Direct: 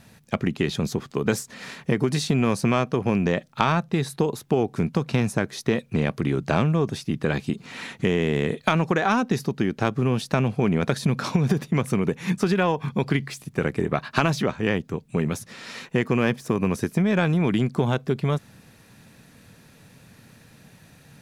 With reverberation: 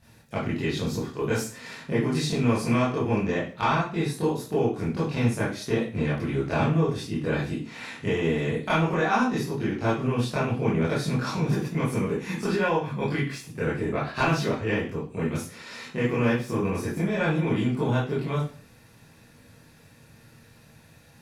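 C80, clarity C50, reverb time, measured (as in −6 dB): 9.5 dB, 3.5 dB, 0.45 s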